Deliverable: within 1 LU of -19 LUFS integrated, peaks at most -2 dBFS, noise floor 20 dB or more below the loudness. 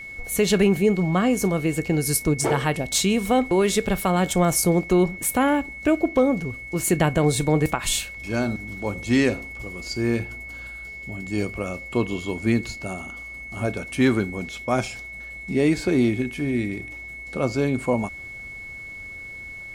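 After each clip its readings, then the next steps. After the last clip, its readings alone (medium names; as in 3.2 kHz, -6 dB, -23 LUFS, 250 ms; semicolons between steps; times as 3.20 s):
steady tone 2.2 kHz; tone level -35 dBFS; loudness -23.0 LUFS; peak level -8.5 dBFS; loudness target -19.0 LUFS
-> band-stop 2.2 kHz, Q 30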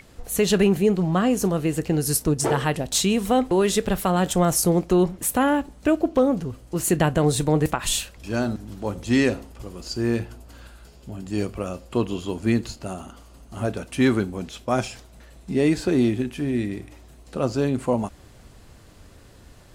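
steady tone not found; loudness -23.0 LUFS; peak level -8.5 dBFS; loudness target -19.0 LUFS
-> trim +4 dB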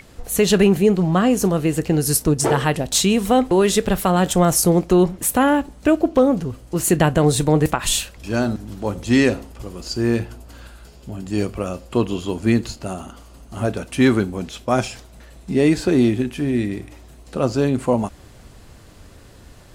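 loudness -19.0 LUFS; peak level -4.5 dBFS; noise floor -45 dBFS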